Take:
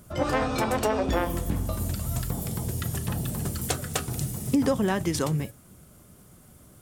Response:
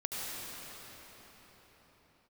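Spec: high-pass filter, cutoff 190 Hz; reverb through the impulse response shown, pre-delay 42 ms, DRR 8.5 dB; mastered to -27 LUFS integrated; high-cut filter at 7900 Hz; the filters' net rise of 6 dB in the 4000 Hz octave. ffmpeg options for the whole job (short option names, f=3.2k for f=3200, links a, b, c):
-filter_complex "[0:a]highpass=190,lowpass=7.9k,equalizer=f=4k:t=o:g=8,asplit=2[a][b];[1:a]atrim=start_sample=2205,adelay=42[c];[b][c]afir=irnorm=-1:irlink=0,volume=-13.5dB[d];[a][d]amix=inputs=2:normalize=0,volume=1.5dB"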